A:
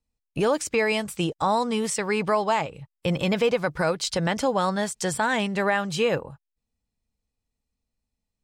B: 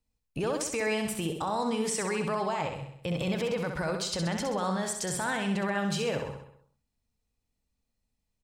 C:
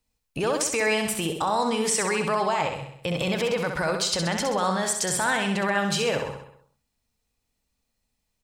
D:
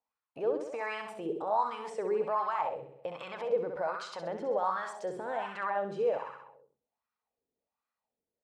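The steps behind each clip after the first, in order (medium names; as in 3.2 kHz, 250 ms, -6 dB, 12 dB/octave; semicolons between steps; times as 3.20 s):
peak limiter -23 dBFS, peak gain reduction 11.5 dB; on a send: feedback delay 65 ms, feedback 53%, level -6 dB
bass shelf 400 Hz -7 dB; trim +8 dB
in parallel at -2.5 dB: compression, threshold -34 dBFS, peak gain reduction 13.5 dB; on the sum: wah-wah 1.3 Hz 390–1300 Hz, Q 3.3; trim -2 dB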